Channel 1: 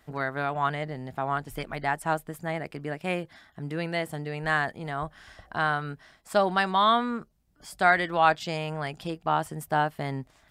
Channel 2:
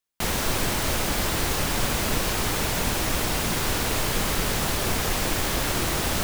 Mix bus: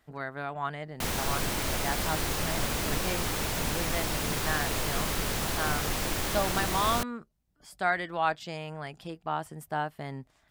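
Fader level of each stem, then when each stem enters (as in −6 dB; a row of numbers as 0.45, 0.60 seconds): −6.5, −5.5 decibels; 0.00, 0.80 seconds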